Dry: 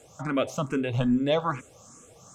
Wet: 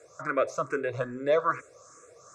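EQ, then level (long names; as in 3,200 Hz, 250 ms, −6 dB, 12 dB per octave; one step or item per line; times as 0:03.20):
high-pass filter 540 Hz 6 dB per octave
high-frequency loss of the air 94 metres
phaser with its sweep stopped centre 830 Hz, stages 6
+6.0 dB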